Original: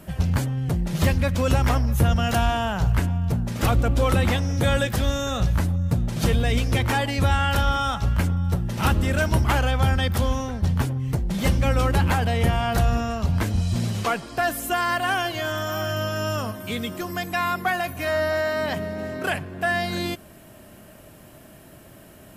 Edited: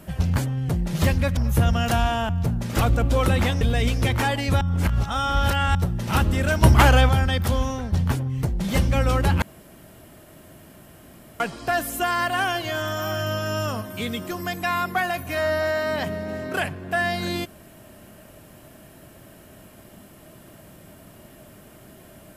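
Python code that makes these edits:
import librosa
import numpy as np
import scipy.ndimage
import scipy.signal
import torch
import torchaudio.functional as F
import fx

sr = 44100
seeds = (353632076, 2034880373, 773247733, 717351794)

y = fx.edit(x, sr, fx.cut(start_s=1.37, length_s=0.43),
    fx.cut(start_s=2.72, length_s=0.43),
    fx.cut(start_s=4.47, length_s=1.84),
    fx.reverse_span(start_s=7.31, length_s=1.14),
    fx.clip_gain(start_s=9.33, length_s=0.46, db=6.5),
    fx.room_tone_fill(start_s=12.12, length_s=1.98), tone=tone)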